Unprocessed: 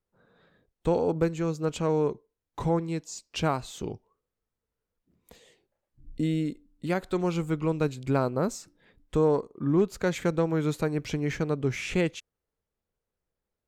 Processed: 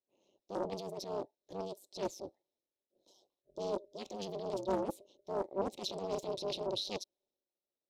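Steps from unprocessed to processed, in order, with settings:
dynamic equaliser 390 Hz, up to −4 dB, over −36 dBFS, Q 1.4
transient designer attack −11 dB, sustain +7 dB
formant filter i
ring modulation 57 Hz
wrong playback speed 45 rpm record played at 78 rpm
highs frequency-modulated by the lows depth 0.44 ms
level +7 dB

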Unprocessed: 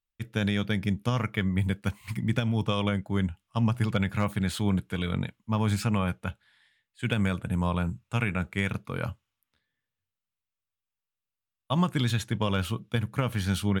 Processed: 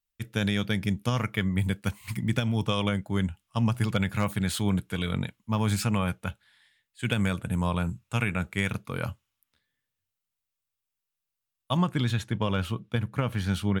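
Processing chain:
high-shelf EQ 4,500 Hz +6.5 dB, from 0:11.77 −6 dB

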